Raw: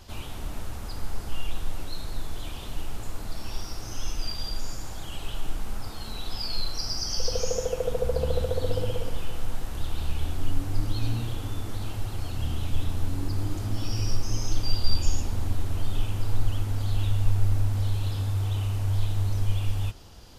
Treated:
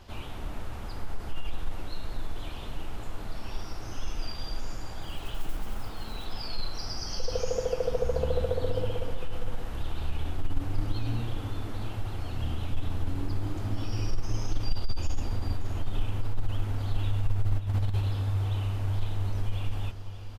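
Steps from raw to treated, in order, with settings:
bass and treble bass −2 dB, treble −10 dB
0:05.02–0:06.26: noise that follows the level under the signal 27 dB
0:17.58–0:18.03: compressor whose output falls as the input rises −27 dBFS, ratio −0.5
single-tap delay 582 ms −13 dB
saturating transformer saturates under 29 Hz

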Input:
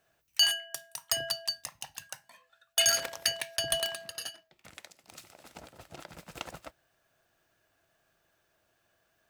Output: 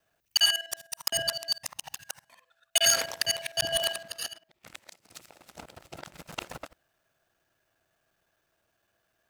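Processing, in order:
reversed piece by piece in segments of 51 ms
leveller curve on the samples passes 1

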